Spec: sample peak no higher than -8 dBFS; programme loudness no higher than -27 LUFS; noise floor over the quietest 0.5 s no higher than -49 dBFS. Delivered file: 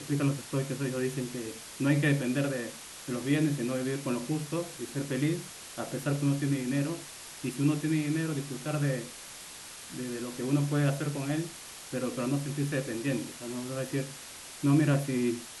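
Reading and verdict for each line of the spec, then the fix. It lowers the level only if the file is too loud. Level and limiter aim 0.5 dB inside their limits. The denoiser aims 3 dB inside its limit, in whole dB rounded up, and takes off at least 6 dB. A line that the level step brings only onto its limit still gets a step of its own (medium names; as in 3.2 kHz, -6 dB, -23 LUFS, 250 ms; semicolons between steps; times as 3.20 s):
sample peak -13.5 dBFS: pass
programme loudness -31.0 LUFS: pass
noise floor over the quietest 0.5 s -46 dBFS: fail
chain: noise reduction 6 dB, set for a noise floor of -46 dBFS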